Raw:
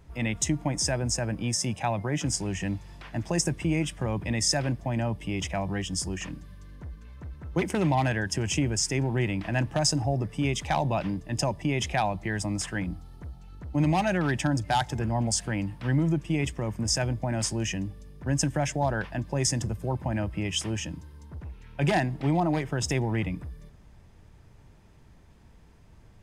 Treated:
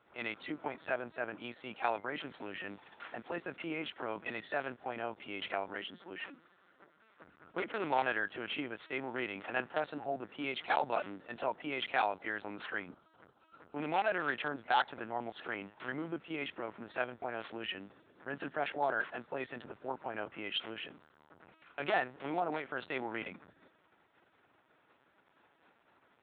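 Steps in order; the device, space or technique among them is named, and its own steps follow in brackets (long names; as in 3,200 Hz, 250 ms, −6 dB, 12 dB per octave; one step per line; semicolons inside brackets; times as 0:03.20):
0:05.75–0:07.21: Butterworth high-pass 160 Hz 48 dB per octave
talking toy (linear-prediction vocoder at 8 kHz pitch kept; high-pass filter 430 Hz 12 dB per octave; parametric band 1,400 Hz +8 dB 0.35 octaves)
level −4.5 dB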